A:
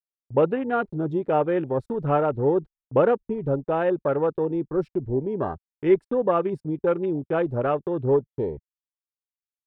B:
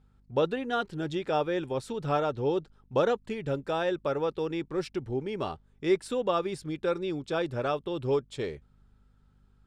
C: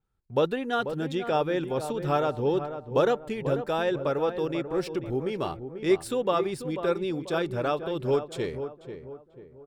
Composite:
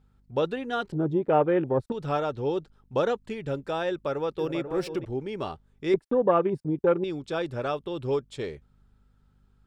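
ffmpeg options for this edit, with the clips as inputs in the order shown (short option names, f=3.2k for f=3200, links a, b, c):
-filter_complex "[0:a]asplit=2[a][b];[1:a]asplit=4[c][d][e][f];[c]atrim=end=0.922[g];[a]atrim=start=0.918:end=1.922[h];[d]atrim=start=1.918:end=4.392[i];[2:a]atrim=start=4.388:end=5.052[j];[e]atrim=start=5.048:end=5.942[k];[b]atrim=start=5.938:end=7.042[l];[f]atrim=start=7.038[m];[g][h]acrossfade=d=0.004:c1=hsin:c2=hsin[n];[n][i]acrossfade=d=0.004:c1=hsin:c2=hsin[o];[o][j]acrossfade=d=0.004:c1=hsin:c2=hsin[p];[p][k]acrossfade=d=0.004:c1=hsin:c2=hsin[q];[q][l]acrossfade=d=0.004:c1=hsin:c2=hsin[r];[r][m]acrossfade=d=0.004:c1=hsin:c2=hsin"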